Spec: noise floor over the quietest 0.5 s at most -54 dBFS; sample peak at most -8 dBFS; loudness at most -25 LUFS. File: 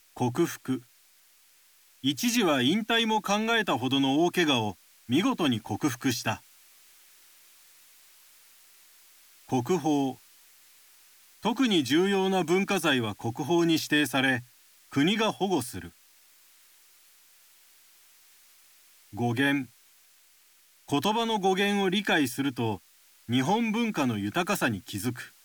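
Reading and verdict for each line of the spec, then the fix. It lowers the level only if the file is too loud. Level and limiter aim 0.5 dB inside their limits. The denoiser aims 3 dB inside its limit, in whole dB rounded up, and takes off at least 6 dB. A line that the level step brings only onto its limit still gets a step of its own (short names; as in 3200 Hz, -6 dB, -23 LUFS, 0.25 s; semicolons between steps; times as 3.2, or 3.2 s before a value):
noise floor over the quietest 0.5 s -61 dBFS: OK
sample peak -11.0 dBFS: OK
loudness -27.0 LUFS: OK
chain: none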